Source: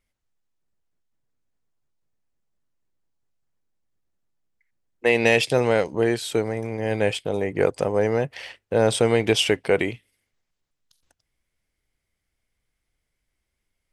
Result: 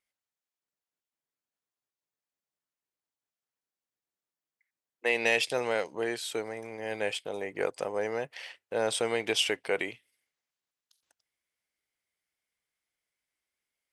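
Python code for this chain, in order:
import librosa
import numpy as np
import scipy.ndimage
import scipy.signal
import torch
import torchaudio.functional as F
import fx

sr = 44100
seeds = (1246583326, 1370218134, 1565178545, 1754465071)

y = fx.highpass(x, sr, hz=720.0, slope=6)
y = y * 10.0 ** (-5.0 / 20.0)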